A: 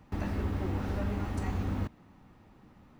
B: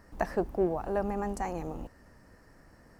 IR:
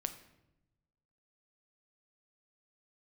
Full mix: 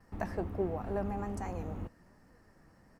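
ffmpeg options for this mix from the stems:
-filter_complex "[0:a]lowpass=2.2k,equalizer=f=1.6k:t=o:w=0.77:g=-3.5,volume=-8.5dB[a];[1:a]flanger=delay=3.8:depth=2.5:regen=65:speed=1.3:shape=triangular,adelay=4,volume=-2dB[b];[a][b]amix=inputs=2:normalize=0"

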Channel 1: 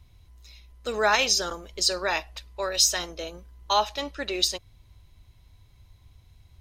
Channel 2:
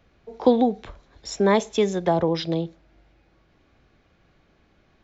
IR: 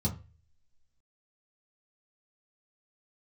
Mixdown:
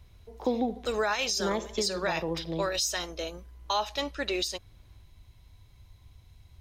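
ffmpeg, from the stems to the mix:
-filter_complex "[0:a]volume=0dB[a];[1:a]volume=-9dB,asplit=2[b][c];[c]volume=-17dB,aecho=0:1:74|148|222|296|370|444|518|592:1|0.55|0.303|0.166|0.0915|0.0503|0.0277|0.0152[d];[a][b][d]amix=inputs=3:normalize=0,alimiter=limit=-18.5dB:level=0:latency=1:release=179"

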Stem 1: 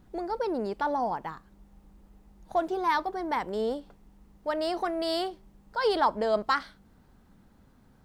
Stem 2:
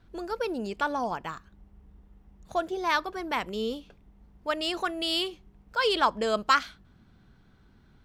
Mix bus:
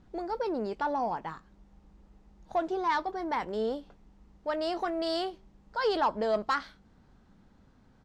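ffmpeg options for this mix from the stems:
-filter_complex "[0:a]lowpass=f=7.1k:w=0.5412,lowpass=f=7.1k:w=1.3066,volume=-1.5dB,asplit=2[a][b];[1:a]adelay=18,volume=-14.5dB[c];[b]apad=whole_len=355728[d];[c][d]sidechaincompress=threshold=-30dB:ratio=8:attack=6.3:release=215[e];[a][e]amix=inputs=2:normalize=0,asoftclip=type=tanh:threshold=-17dB"

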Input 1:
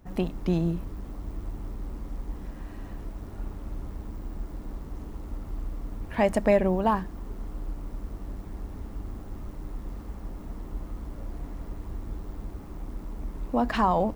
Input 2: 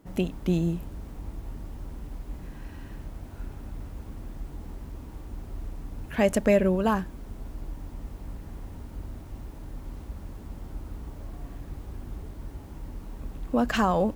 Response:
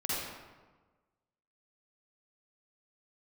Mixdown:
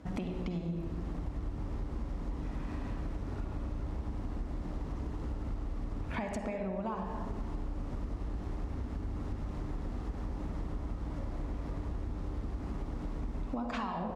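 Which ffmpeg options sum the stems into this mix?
-filter_complex "[0:a]highpass=53,acompressor=threshold=-29dB:ratio=6,volume=0.5dB,asplit=3[a][b][c];[b]volume=-5.5dB[d];[1:a]adelay=0.8,volume=2dB[e];[c]apad=whole_len=624456[f];[e][f]sidechaincompress=threshold=-42dB:ratio=8:attack=16:release=115[g];[2:a]atrim=start_sample=2205[h];[d][h]afir=irnorm=-1:irlink=0[i];[a][g][i]amix=inputs=3:normalize=0,lowpass=6.1k,acompressor=threshold=-33dB:ratio=6"

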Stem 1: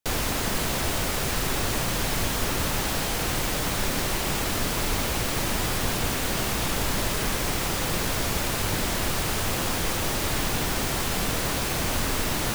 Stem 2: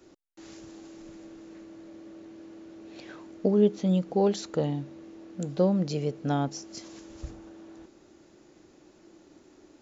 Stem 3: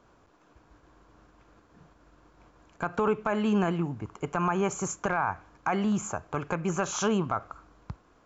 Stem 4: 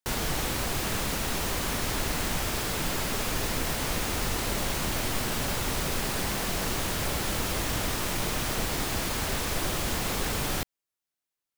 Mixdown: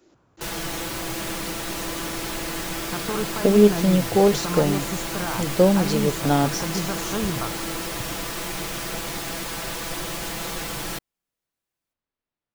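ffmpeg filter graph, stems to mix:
-filter_complex "[0:a]lowpass=4.1k,volume=-15.5dB[a];[1:a]dynaudnorm=f=170:g=9:m=12.5dB,volume=-2dB,asplit=2[b][c];[2:a]equalizer=f=120:w=0.88:g=13,adelay=100,volume=-4dB[d];[3:a]aecho=1:1:6:0.82,adelay=350,volume=-2dB[e];[c]apad=whole_len=553323[f];[a][f]sidechaingate=range=-48dB:threshold=-48dB:ratio=16:detection=peak[g];[g][b][d][e]amix=inputs=4:normalize=0,lowshelf=f=140:g=-6.5"

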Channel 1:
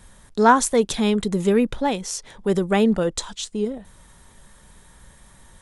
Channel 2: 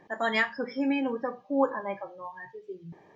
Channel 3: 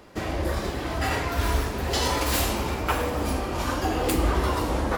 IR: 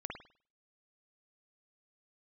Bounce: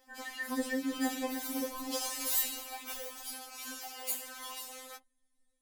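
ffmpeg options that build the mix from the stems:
-filter_complex "[0:a]volume=-20dB[a];[1:a]volume=-3dB,asplit=3[b][c][d];[c]volume=-15.5dB[e];[2:a]aderivative,bandreject=f=265.4:t=h:w=4,bandreject=f=530.8:t=h:w=4,bandreject=f=796.2:t=h:w=4,bandreject=f=1.0616k:t=h:w=4,bandreject=f=1.327k:t=h:w=4,bandreject=f=1.5924k:t=h:w=4,bandreject=f=1.8578k:t=h:w=4,bandreject=f=2.1232k:t=h:w=4,bandreject=f=2.3886k:t=h:w=4,bandreject=f=2.654k:t=h:w=4,bandreject=f=2.9194k:t=h:w=4,bandreject=f=3.1848k:t=h:w=4,bandreject=f=3.4502k:t=h:w=4,bandreject=f=3.7156k:t=h:w=4,bandreject=f=3.981k:t=h:w=4,bandreject=f=4.2464k:t=h:w=4,bandreject=f=4.5118k:t=h:w=4,bandreject=f=4.7772k:t=h:w=4,volume=-4.5dB[f];[d]apad=whole_len=247747[g];[a][g]sidechaingate=range=-9dB:threshold=-53dB:ratio=16:detection=peak[h];[h][b]amix=inputs=2:normalize=0,equalizer=f=1.4k:w=0.78:g=-8,acompressor=threshold=-36dB:ratio=6,volume=0dB[i];[e]aecho=0:1:315|630|945|1260|1575|1890|2205:1|0.47|0.221|0.104|0.0488|0.0229|0.0108[j];[f][i][j]amix=inputs=3:normalize=0,dynaudnorm=f=100:g=3:m=3dB,afftfilt=real='re*3.46*eq(mod(b,12),0)':imag='im*3.46*eq(mod(b,12),0)':win_size=2048:overlap=0.75"

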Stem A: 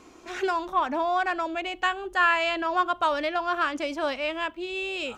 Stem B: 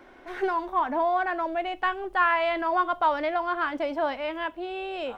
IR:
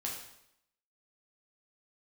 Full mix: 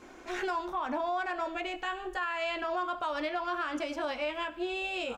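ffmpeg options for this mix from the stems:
-filter_complex "[0:a]volume=-5.5dB,asplit=2[a][b];[b]volume=-12dB[c];[1:a]acompressor=threshold=-32dB:ratio=6,adelay=17,volume=-1.5dB[d];[2:a]atrim=start_sample=2205[e];[c][e]afir=irnorm=-1:irlink=0[f];[a][d][f]amix=inputs=3:normalize=0,alimiter=level_in=0.5dB:limit=-24dB:level=0:latency=1:release=74,volume=-0.5dB"

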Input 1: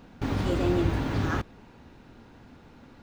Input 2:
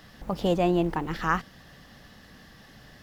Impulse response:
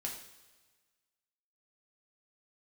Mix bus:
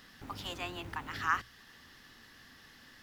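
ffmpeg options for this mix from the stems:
-filter_complex "[0:a]bandreject=f=60:t=h:w=6,bandreject=f=120:t=h:w=6,acompressor=threshold=-46dB:ratio=1.5,volume=-12dB[a];[1:a]highpass=f=1.1k:w=0.5412,highpass=f=1.1k:w=1.3066,volume=-2.5dB[b];[a][b]amix=inputs=2:normalize=0"

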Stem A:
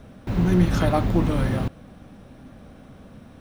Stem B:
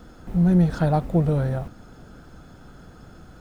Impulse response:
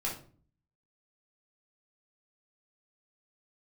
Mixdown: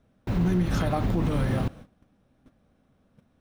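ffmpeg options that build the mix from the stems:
-filter_complex "[0:a]volume=-1dB[a];[1:a]volume=-15.5dB[b];[a][b]amix=inputs=2:normalize=0,agate=range=-19dB:threshold=-41dB:ratio=16:detection=peak,alimiter=limit=-16.5dB:level=0:latency=1:release=64"

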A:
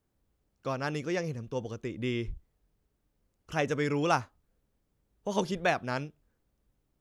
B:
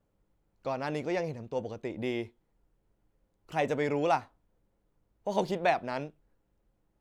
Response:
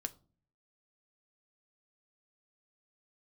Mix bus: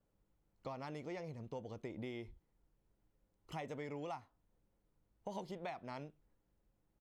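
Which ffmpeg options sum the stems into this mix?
-filter_complex "[0:a]volume=-17dB[a];[1:a]adelay=0.9,volume=-5.5dB[b];[a][b]amix=inputs=2:normalize=0,acompressor=threshold=-42dB:ratio=6"

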